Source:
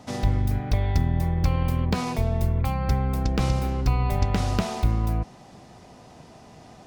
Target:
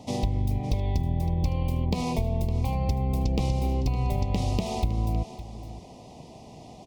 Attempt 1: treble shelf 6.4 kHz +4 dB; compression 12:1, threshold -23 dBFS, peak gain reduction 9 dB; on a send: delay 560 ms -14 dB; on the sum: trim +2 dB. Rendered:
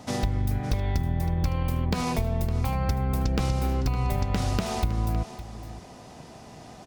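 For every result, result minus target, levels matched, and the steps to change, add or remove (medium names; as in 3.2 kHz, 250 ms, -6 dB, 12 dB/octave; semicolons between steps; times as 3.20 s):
2 kHz band +6.5 dB; 8 kHz band +4.0 dB
add after compression: Butterworth band-stop 1.5 kHz, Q 1.1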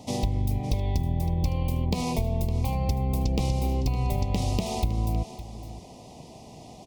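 8 kHz band +4.0 dB
change: treble shelf 6.4 kHz -3.5 dB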